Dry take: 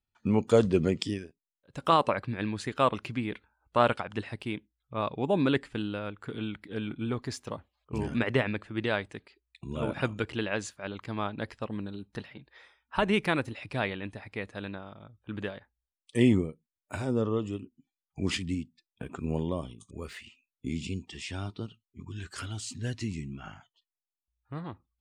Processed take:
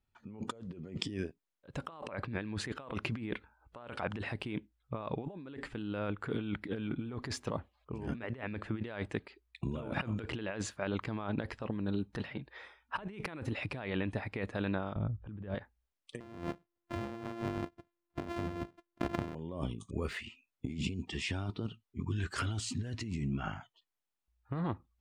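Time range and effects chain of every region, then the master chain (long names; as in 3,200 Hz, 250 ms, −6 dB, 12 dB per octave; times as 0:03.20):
0:14.96–0:15.55: RIAA equalisation playback + upward compression, threshold −49 dBFS
0:16.20–0:19.35: samples sorted by size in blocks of 128 samples + high-shelf EQ 6,500 Hz −11.5 dB
whole clip: high-shelf EQ 3,600 Hz −10.5 dB; compressor whose output falls as the input rises −39 dBFS, ratio −1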